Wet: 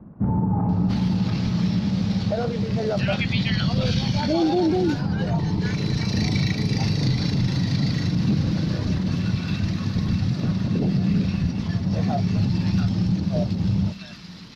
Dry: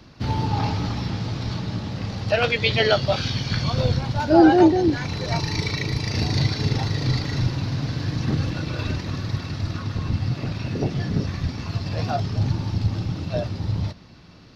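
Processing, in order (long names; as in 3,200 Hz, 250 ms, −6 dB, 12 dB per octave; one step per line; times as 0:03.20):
parametric band 190 Hz +14.5 dB 0.48 octaves
brickwall limiter −13.5 dBFS, peak gain reduction 11 dB
multiband delay without the direct sound lows, highs 690 ms, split 1,200 Hz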